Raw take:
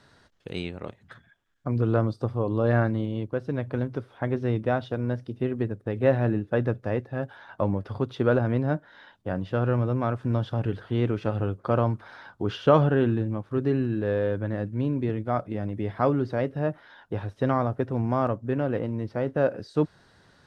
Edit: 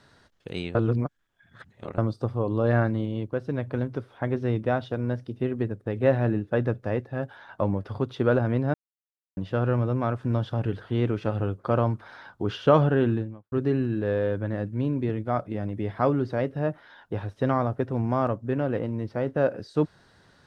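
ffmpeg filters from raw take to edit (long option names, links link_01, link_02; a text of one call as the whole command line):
ffmpeg -i in.wav -filter_complex "[0:a]asplit=6[link_01][link_02][link_03][link_04][link_05][link_06];[link_01]atrim=end=0.752[link_07];[link_02]atrim=start=0.748:end=1.982,asetpts=PTS-STARTPTS,areverse[link_08];[link_03]atrim=start=1.978:end=8.74,asetpts=PTS-STARTPTS,afade=type=out:start_time=6.758:duration=0.004:curve=hsin[link_09];[link_04]atrim=start=8.74:end=9.37,asetpts=PTS-STARTPTS,volume=0[link_10];[link_05]atrim=start=9.37:end=13.52,asetpts=PTS-STARTPTS,afade=type=in:duration=0.004:curve=hsin,afade=type=out:start_time=3.79:duration=0.36:curve=qua[link_11];[link_06]atrim=start=13.52,asetpts=PTS-STARTPTS,afade=type=in:duration=0.004:curve=hsin[link_12];[link_07][link_08]acrossfade=duration=0.004:curve1=hsin:curve2=hsin[link_13];[link_09][link_10][link_11][link_12]concat=n=4:v=0:a=1[link_14];[link_13][link_14]acrossfade=duration=0.004:curve1=hsin:curve2=hsin" out.wav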